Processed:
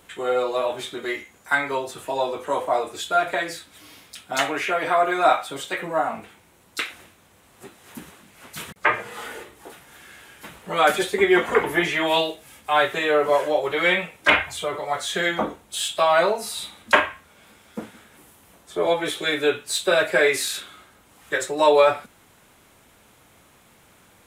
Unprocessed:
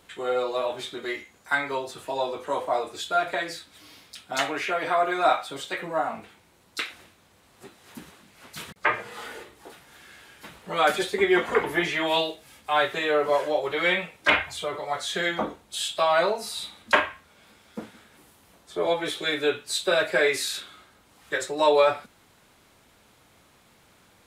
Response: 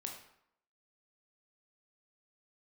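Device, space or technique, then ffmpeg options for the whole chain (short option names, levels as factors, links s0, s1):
exciter from parts: -filter_complex "[0:a]asplit=2[s0][s1];[s1]highpass=f=4200:w=0.5412,highpass=f=4200:w=1.3066,asoftclip=type=tanh:threshold=0.0316,volume=0.501[s2];[s0][s2]amix=inputs=2:normalize=0,volume=1.5"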